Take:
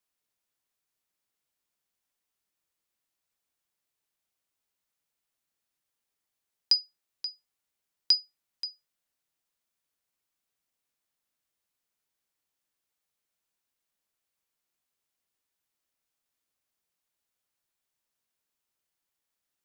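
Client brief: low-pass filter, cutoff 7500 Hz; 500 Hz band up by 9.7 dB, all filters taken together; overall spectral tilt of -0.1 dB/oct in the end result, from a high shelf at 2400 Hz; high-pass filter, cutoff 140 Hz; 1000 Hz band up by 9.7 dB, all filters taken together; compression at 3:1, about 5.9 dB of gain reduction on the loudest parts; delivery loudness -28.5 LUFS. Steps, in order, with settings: HPF 140 Hz; LPF 7500 Hz; bell 500 Hz +9 dB; bell 1000 Hz +8 dB; high shelf 2400 Hz +8.5 dB; compressor 3:1, threshold -19 dBFS; gain -2 dB

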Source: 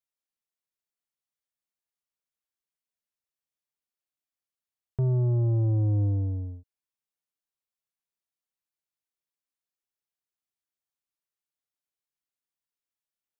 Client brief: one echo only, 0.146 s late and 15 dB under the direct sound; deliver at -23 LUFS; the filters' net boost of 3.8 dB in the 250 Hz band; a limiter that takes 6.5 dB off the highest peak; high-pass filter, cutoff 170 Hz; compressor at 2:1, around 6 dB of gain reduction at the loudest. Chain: HPF 170 Hz; bell 250 Hz +8 dB; compressor 2:1, threshold -37 dBFS; limiter -32 dBFS; echo 0.146 s -15 dB; gain +15 dB

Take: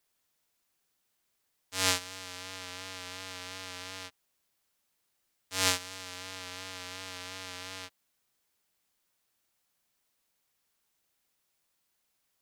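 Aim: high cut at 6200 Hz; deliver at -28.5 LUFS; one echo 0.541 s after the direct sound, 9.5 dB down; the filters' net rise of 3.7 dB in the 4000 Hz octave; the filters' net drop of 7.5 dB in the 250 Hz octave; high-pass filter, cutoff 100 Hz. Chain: HPF 100 Hz; LPF 6200 Hz; bell 250 Hz -8.5 dB; bell 4000 Hz +5.5 dB; echo 0.541 s -9.5 dB; gain +4.5 dB

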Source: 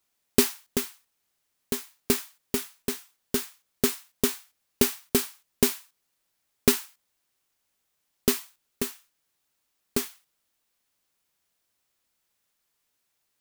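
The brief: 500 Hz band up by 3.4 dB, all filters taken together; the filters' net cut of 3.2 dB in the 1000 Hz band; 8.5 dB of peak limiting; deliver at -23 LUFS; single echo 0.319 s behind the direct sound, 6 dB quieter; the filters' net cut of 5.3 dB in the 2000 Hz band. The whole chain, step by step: bell 500 Hz +5.5 dB; bell 1000 Hz -4 dB; bell 2000 Hz -6 dB; limiter -10.5 dBFS; echo 0.319 s -6 dB; gain +8 dB

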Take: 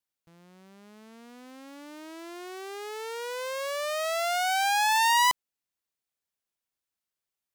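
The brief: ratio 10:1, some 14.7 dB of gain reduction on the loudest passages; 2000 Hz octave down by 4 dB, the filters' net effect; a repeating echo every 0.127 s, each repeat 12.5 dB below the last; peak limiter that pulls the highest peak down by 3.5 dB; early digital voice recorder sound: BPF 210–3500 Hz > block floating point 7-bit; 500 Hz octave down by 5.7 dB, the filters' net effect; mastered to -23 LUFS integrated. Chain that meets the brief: bell 500 Hz -7.5 dB; bell 2000 Hz -4 dB; compressor 10:1, threshold -37 dBFS; limiter -34 dBFS; BPF 210–3500 Hz; feedback echo 0.127 s, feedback 24%, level -12.5 dB; block floating point 7-bit; gain +21.5 dB

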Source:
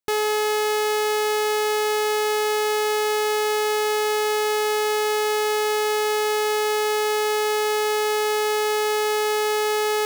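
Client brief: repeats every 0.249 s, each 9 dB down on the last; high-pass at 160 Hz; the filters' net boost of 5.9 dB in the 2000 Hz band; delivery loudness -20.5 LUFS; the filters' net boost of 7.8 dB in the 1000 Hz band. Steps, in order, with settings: HPF 160 Hz; bell 1000 Hz +9 dB; bell 2000 Hz +4.5 dB; feedback echo 0.249 s, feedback 35%, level -9 dB; gain -2.5 dB

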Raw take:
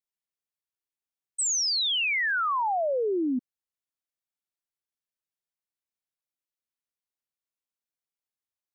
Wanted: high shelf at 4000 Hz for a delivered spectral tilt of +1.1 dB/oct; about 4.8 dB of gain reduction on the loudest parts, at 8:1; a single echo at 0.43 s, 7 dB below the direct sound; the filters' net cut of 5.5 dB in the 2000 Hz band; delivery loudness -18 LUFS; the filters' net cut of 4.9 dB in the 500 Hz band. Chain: bell 500 Hz -6 dB; bell 2000 Hz -8 dB; high shelf 4000 Hz +4.5 dB; compressor 8:1, threshold -27 dBFS; echo 0.43 s -7 dB; gain +10.5 dB

